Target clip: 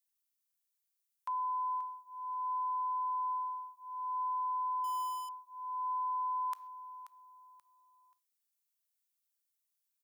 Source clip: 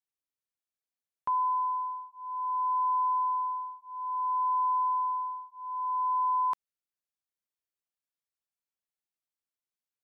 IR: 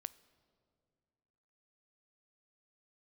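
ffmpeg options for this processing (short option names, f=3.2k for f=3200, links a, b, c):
-filter_complex "[0:a]asplit=2[a][b];[b]aecho=0:1:532|1064|1596:0.178|0.0533|0.016[c];[a][c]amix=inputs=2:normalize=0[d];[1:a]atrim=start_sample=2205,afade=t=out:st=0.19:d=0.01,atrim=end_sample=8820[e];[d][e]afir=irnorm=-1:irlink=0,asettb=1/sr,asplit=3[f][g][h];[f]atrim=end=4.844[i];[g]atrim=start=4.84:end=5.29,asetpts=PTS-STARTPTS,afade=t=in:d=0.004:c=qsin,afade=t=out:st=0.446:d=0.004:c=qsin,aeval=exprs='sgn(val(0))*max(abs(val(0))-0.002,0)':c=same[j];[h]atrim=start=5.286[k];[i][j]acrossfade=d=0.004:c1=hsin:c2=qsin[l];[l][k]acrossfade=d=0.004:c1=qsin:c2=hsin,highpass=1k,alimiter=level_in=8.5dB:limit=-24dB:level=0:latency=1:release=36,volume=-8.5dB,crystalizer=i=3:c=0"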